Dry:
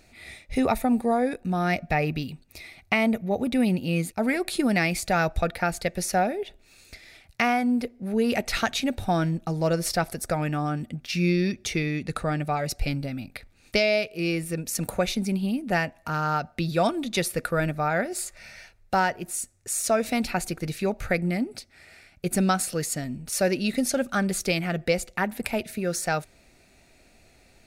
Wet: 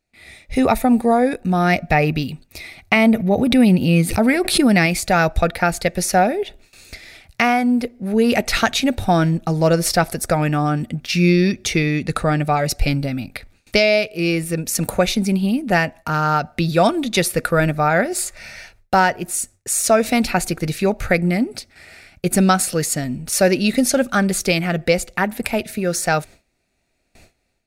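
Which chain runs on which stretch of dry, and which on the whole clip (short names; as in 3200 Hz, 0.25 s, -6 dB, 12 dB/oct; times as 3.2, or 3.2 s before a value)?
2.96–4.86 bell 140 Hz +3.5 dB 1.6 oct + notch 6900 Hz, Q 8.7 + backwards sustainer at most 87 dB/s
whole clip: gate with hold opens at -45 dBFS; AGC gain up to 9 dB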